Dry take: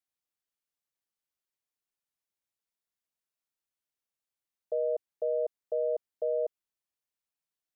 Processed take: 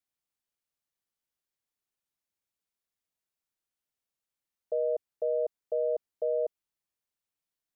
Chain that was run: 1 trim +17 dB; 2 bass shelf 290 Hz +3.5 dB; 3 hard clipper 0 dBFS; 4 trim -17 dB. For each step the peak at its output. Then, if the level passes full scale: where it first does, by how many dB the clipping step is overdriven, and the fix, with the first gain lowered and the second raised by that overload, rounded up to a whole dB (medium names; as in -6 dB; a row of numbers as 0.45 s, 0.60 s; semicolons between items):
-6.0 dBFS, -5.0 dBFS, -5.0 dBFS, -22.0 dBFS; nothing clips